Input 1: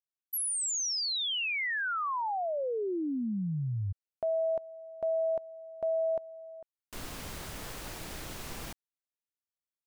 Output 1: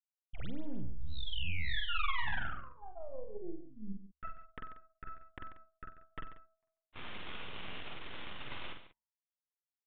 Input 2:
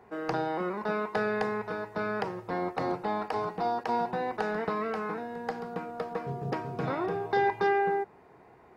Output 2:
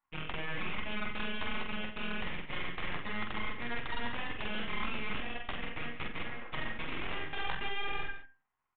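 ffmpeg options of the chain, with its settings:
-filter_complex "[0:a]agate=range=-17dB:threshold=-38dB:ratio=3:release=116:detection=peak,lowshelf=f=750:t=q:w=3:g=-12.5,bandreject=f=460:w=12,bandreject=f=72.22:t=h:w=4,bandreject=f=144.44:t=h:w=4,bandreject=f=216.66:t=h:w=4,bandreject=f=288.88:t=h:w=4,bandreject=f=361.1:t=h:w=4,bandreject=f=433.32:t=h:w=4,bandreject=f=505.54:t=h:w=4,bandreject=f=577.76:t=h:w=4,bandreject=f=649.98:t=h:w=4,bandreject=f=722.2:t=h:w=4,bandreject=f=794.42:t=h:w=4,bandreject=f=866.64:t=h:w=4,bandreject=f=938.86:t=h:w=4,bandreject=f=1.01108k:t=h:w=4,areverse,acompressor=threshold=-41dB:ratio=5:attack=4.6:release=118:knee=6:detection=rms,areverse,flanger=delay=3.4:depth=8.3:regen=-18:speed=1.1:shape=sinusoidal,aeval=exprs='0.02*(cos(1*acos(clip(val(0)/0.02,-1,1)))-cos(1*PI/2))+0.00708*(cos(3*acos(clip(val(0)/0.02,-1,1)))-cos(3*PI/2))+0.00316*(cos(6*acos(clip(val(0)/0.02,-1,1)))-cos(6*PI/2))':c=same,asplit=2[a][b];[b]adelay=46,volume=-5dB[c];[a][c]amix=inputs=2:normalize=0,aecho=1:1:46.65|139.9:0.282|0.251,aresample=8000,aresample=44100,volume=13.5dB"

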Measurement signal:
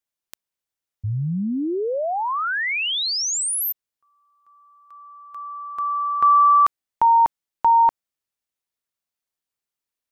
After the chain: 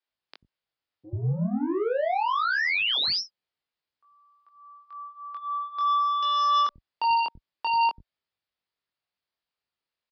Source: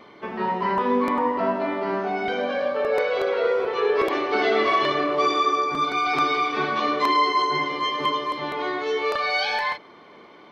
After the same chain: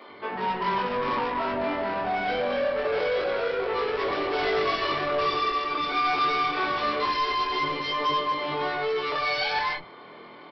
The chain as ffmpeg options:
-filter_complex "[0:a]highpass=42,aresample=11025,asoftclip=type=tanh:threshold=-25.5dB,aresample=44100,flanger=delay=20:depth=4.4:speed=0.24,acrossover=split=260[a][b];[a]adelay=90[c];[c][b]amix=inputs=2:normalize=0,volume=5.5dB"

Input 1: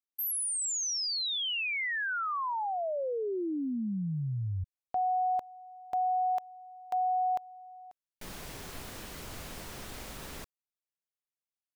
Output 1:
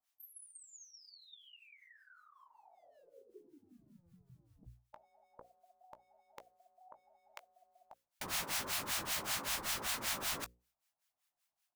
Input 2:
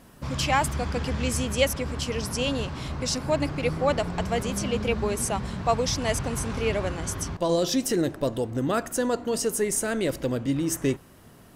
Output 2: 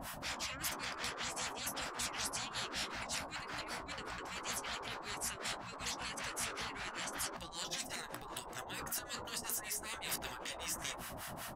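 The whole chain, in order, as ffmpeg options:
-filter_complex "[0:a]asplit=2[a][b];[b]alimiter=limit=-20dB:level=0:latency=1:release=222,volume=1dB[c];[a][c]amix=inputs=2:normalize=0,lowshelf=f=560:t=q:w=3:g=-6.5,areverse,acompressor=threshold=-30dB:ratio=10:attack=1.2:release=286:knee=6:detection=peak,areverse,acrossover=split=1000[d][e];[d]aeval=exprs='val(0)*(1-1/2+1/2*cos(2*PI*5.2*n/s))':c=same[f];[e]aeval=exprs='val(0)*(1-1/2-1/2*cos(2*PI*5.2*n/s))':c=same[g];[f][g]amix=inputs=2:normalize=0,bandreject=f=60:t=h:w=6,bandreject=f=120:t=h:w=6,bandreject=f=180:t=h:w=6,bandreject=f=240:t=h:w=6,bandreject=f=300:t=h:w=6,bandreject=f=360:t=h:w=6,bandreject=f=420:t=h:w=6,bandreject=f=480:t=h:w=6,bandreject=f=540:t=h:w=6,asplit=2[h][i];[i]adelay=18,volume=-13dB[j];[h][j]amix=inputs=2:normalize=0,afftfilt=real='re*lt(hypot(re,im),0.0158)':imag='im*lt(hypot(re,im),0.0158)':win_size=1024:overlap=0.75,volume=7.5dB"

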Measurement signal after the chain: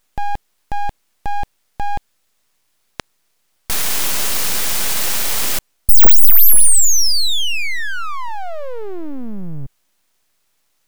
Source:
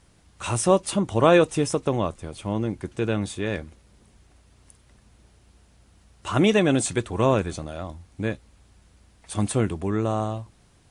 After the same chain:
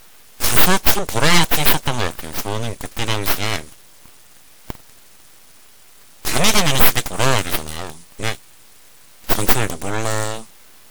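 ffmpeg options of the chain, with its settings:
-af "crystalizer=i=10:c=0,apsyclip=4.5dB,aeval=exprs='abs(val(0))':c=same,volume=-1.5dB"

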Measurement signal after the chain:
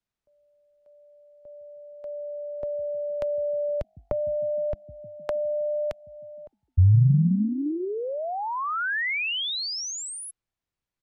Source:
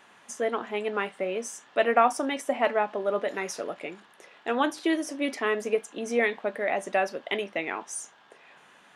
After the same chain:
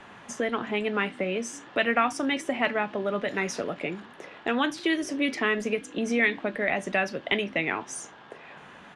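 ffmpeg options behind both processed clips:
-filter_complex "[0:a]aemphasis=mode=reproduction:type=bsi,acrossover=split=170|1600[a][b][c];[a]asplit=7[d][e][f][g][h][i][j];[e]adelay=153,afreqshift=49,volume=-11.5dB[k];[f]adelay=306,afreqshift=98,volume=-16.5dB[l];[g]adelay=459,afreqshift=147,volume=-21.6dB[m];[h]adelay=612,afreqshift=196,volume=-26.6dB[n];[i]adelay=765,afreqshift=245,volume=-31.6dB[o];[j]adelay=918,afreqshift=294,volume=-36.7dB[p];[d][k][l][m][n][o][p]amix=inputs=7:normalize=0[q];[b]acompressor=threshold=-38dB:ratio=4[r];[q][r][c]amix=inputs=3:normalize=0,volume=8dB"

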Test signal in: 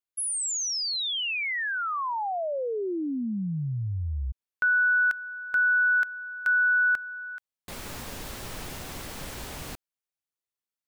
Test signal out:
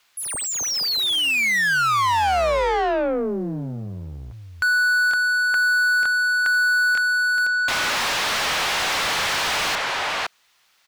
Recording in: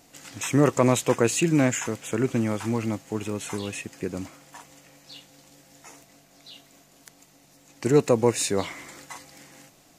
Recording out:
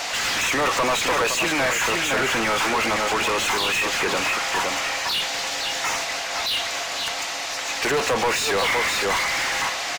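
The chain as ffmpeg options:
-filter_complex "[0:a]highshelf=f=3.5k:g=5.5,asplit=2[a][b];[b]adelay=513.1,volume=-10dB,highshelf=f=4k:g=-11.5[c];[a][c]amix=inputs=2:normalize=0,acompressor=threshold=-36dB:ratio=2:attack=4.6:release=32:knee=6:detection=peak,acrossover=split=580 6300:gain=0.112 1 0.158[d][e][f];[d][e][f]amix=inputs=3:normalize=0,asplit=2[g][h];[h]highpass=f=720:p=1,volume=36dB,asoftclip=type=tanh:threshold=-20.5dB[i];[g][i]amix=inputs=2:normalize=0,lowpass=f=3.3k:p=1,volume=-6dB,acrusher=bits=11:mix=0:aa=0.000001,volume=7dB"

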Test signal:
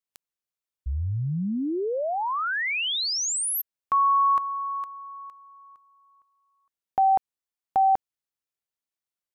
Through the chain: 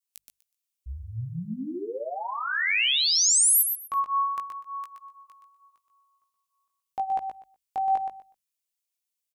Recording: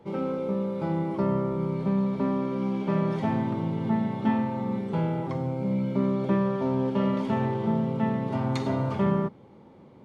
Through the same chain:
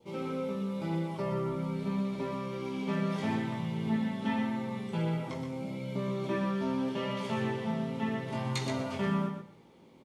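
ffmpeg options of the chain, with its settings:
-af "bandreject=f=50:t=h:w=6,bandreject=f=100:t=h:w=6,bandreject=f=150:t=h:w=6,bandreject=f=200:t=h:w=6,adynamicequalizer=threshold=0.00562:dfrequency=1700:dqfactor=2.2:tfrequency=1700:tqfactor=2.2:attack=5:release=100:ratio=0.375:range=3.5:mode=boostabove:tftype=bell,flanger=delay=17:depth=2.8:speed=0.83,aexciter=amount=4.1:drive=2:freq=2.3k,aecho=1:1:123|246|369:0.447|0.0849|0.0161,volume=-4dB"

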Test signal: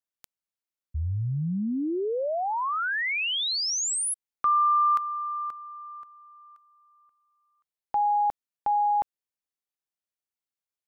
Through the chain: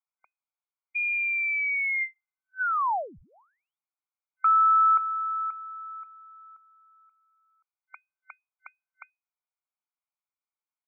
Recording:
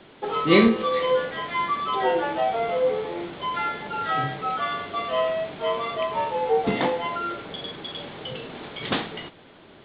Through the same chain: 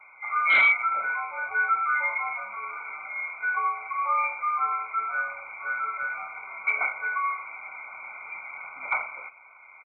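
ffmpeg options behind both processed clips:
-af "afftfilt=real='re*(1-between(b*sr/4096,410,970))':imag='im*(1-between(b*sr/4096,410,970))':win_size=4096:overlap=0.75,lowpass=f=2.1k:t=q:w=0.5098,lowpass=f=2.1k:t=q:w=0.6013,lowpass=f=2.1k:t=q:w=0.9,lowpass=f=2.1k:t=q:w=2.563,afreqshift=-2500,aresample=8000,asoftclip=type=hard:threshold=-16.5dB,aresample=44100,lowshelf=f=560:t=q:w=1.5:g=-13"

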